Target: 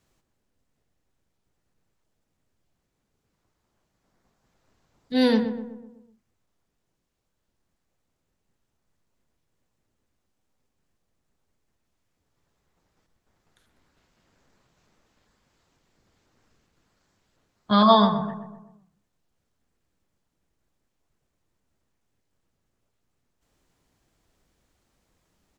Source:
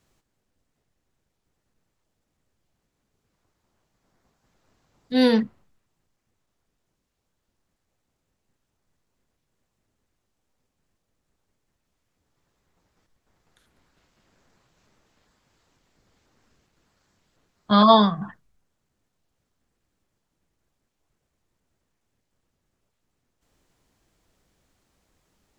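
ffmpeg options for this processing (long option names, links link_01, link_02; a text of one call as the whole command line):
ffmpeg -i in.wav -filter_complex "[0:a]asplit=2[link_01][link_02];[link_02]adelay=125,lowpass=frequency=1500:poles=1,volume=-8.5dB,asplit=2[link_03][link_04];[link_04]adelay=125,lowpass=frequency=1500:poles=1,volume=0.51,asplit=2[link_05][link_06];[link_06]adelay=125,lowpass=frequency=1500:poles=1,volume=0.51,asplit=2[link_07][link_08];[link_08]adelay=125,lowpass=frequency=1500:poles=1,volume=0.51,asplit=2[link_09][link_10];[link_10]adelay=125,lowpass=frequency=1500:poles=1,volume=0.51,asplit=2[link_11][link_12];[link_12]adelay=125,lowpass=frequency=1500:poles=1,volume=0.51[link_13];[link_01][link_03][link_05][link_07][link_09][link_11][link_13]amix=inputs=7:normalize=0,volume=-2dB" out.wav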